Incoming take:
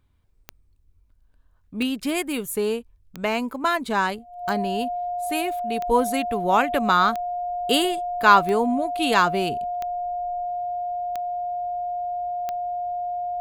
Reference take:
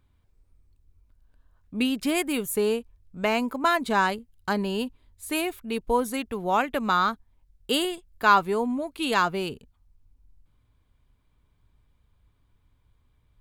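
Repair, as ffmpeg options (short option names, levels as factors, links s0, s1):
-af "adeclick=t=4,bandreject=f=710:w=30,asetnsamples=n=441:p=0,asendcmd='5.91 volume volume -4dB',volume=1"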